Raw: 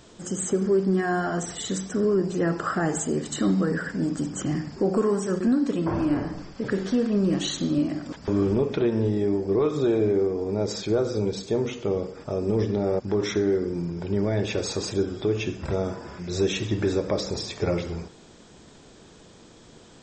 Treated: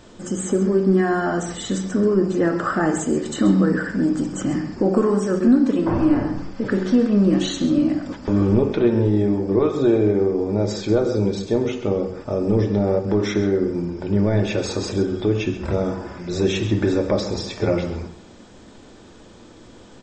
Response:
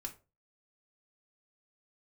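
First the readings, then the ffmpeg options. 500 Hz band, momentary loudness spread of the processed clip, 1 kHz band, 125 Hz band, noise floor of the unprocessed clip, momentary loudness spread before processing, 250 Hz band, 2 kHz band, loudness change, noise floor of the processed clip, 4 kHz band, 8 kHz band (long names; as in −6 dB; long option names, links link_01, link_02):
+4.0 dB, 8 LU, +4.5 dB, +5.5 dB, −50 dBFS, 7 LU, +6.5 dB, +4.0 dB, +5.0 dB, −45 dBFS, +2.0 dB, 0.0 dB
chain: -filter_complex "[0:a]highshelf=frequency=3700:gain=-6.5,aecho=1:1:132:0.224,asplit=2[link_01][link_02];[1:a]atrim=start_sample=2205[link_03];[link_02][link_03]afir=irnorm=-1:irlink=0,volume=4.5dB[link_04];[link_01][link_04]amix=inputs=2:normalize=0,volume=-1.5dB"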